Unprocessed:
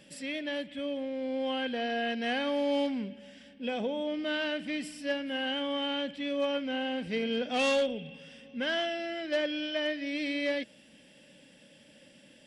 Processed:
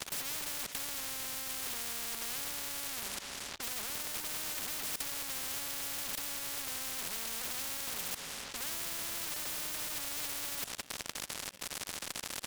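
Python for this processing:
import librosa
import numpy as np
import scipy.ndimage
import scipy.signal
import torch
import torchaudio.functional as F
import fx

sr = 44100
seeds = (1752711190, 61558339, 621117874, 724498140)

p1 = scipy.signal.sosfilt(scipy.signal.butter(4, 64.0, 'highpass', fs=sr, output='sos'), x)
p2 = fx.hum_notches(p1, sr, base_hz=50, count=6)
p3 = fx.fuzz(p2, sr, gain_db=53.0, gate_db=-52.0)
p4 = p2 + (p3 * 10.0 ** (-4.0 / 20.0))
p5 = fx.level_steps(p4, sr, step_db=21)
p6 = fx.spectral_comp(p5, sr, ratio=10.0)
y = p6 * 10.0 ** (1.5 / 20.0)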